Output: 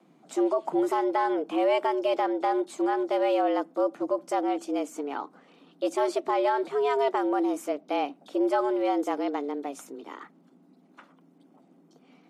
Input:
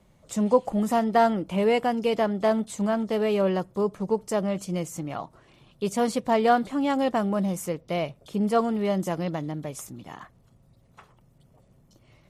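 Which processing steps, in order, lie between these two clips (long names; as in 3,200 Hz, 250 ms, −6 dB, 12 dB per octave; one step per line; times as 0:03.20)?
frequency shifter +140 Hz
brickwall limiter −16 dBFS, peak gain reduction 9.5 dB
high-shelf EQ 6,200 Hz −11.5 dB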